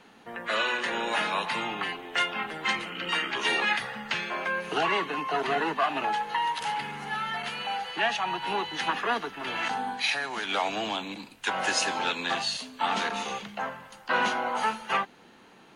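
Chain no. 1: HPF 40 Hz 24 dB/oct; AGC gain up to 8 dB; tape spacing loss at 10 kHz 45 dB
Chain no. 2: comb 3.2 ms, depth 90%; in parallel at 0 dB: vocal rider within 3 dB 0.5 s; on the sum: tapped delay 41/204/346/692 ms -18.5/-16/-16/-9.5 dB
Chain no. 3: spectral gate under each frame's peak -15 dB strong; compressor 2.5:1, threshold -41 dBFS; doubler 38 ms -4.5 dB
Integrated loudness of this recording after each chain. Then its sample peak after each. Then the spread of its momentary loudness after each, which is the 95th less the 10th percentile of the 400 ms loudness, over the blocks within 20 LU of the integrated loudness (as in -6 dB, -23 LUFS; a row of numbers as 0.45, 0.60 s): -27.0, -20.0, -37.5 LUFS; -10.5, -3.5, -21.5 dBFS; 7, 5, 4 LU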